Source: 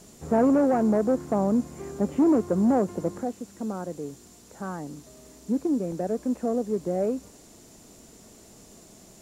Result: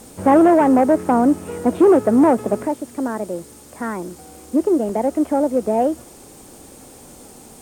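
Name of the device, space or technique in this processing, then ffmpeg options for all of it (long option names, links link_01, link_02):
nightcore: -af "asetrate=53361,aresample=44100,volume=8.5dB"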